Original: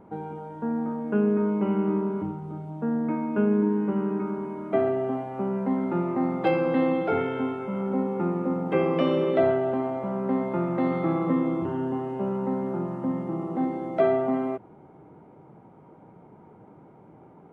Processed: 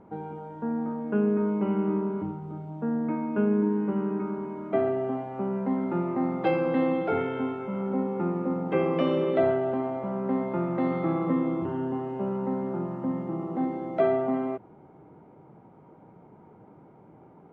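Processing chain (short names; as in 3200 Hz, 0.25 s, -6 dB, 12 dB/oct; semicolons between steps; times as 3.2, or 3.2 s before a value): air absorption 56 m; gain -1.5 dB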